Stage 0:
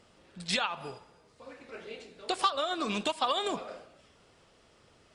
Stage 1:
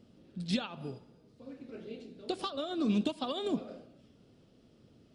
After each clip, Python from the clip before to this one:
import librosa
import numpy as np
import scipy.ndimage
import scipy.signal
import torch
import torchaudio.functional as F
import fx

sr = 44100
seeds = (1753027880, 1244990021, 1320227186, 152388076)

y = fx.graphic_eq(x, sr, hz=(125, 250, 1000, 2000, 8000), db=(7, 11, -9, -8, -10))
y = y * librosa.db_to_amplitude(-3.0)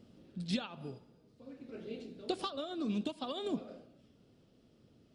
y = fx.rider(x, sr, range_db=4, speed_s=0.5)
y = y * librosa.db_to_amplitude(-2.5)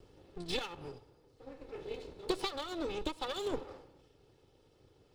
y = fx.lower_of_two(x, sr, delay_ms=2.3)
y = y * librosa.db_to_amplitude(2.5)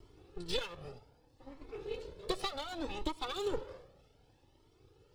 y = fx.comb_cascade(x, sr, direction='rising', hz=0.65)
y = y * librosa.db_to_amplitude(4.0)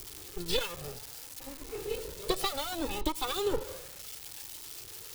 y = x + 0.5 * 10.0 ** (-36.5 / 20.0) * np.diff(np.sign(x), prepend=np.sign(x[:1]))
y = y * librosa.db_to_amplitude(5.0)